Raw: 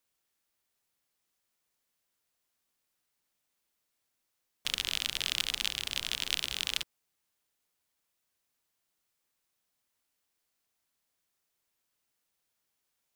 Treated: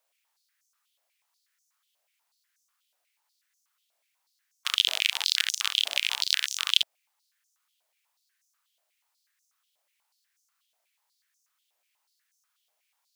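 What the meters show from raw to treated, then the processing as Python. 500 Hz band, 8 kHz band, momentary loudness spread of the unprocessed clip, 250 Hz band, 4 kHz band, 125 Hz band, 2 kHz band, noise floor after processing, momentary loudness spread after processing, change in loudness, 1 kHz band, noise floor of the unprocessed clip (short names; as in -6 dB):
+1.5 dB, +5.5 dB, 5 LU, under -15 dB, +7.0 dB, under -25 dB, +6.5 dB, -78 dBFS, 4 LU, +7.0 dB, +6.5 dB, -82 dBFS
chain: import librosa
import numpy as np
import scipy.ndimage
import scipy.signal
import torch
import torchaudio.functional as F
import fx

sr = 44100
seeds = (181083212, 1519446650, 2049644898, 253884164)

y = fx.filter_held_highpass(x, sr, hz=8.2, low_hz=640.0, high_hz=6100.0)
y = F.gain(torch.from_numpy(y), 2.5).numpy()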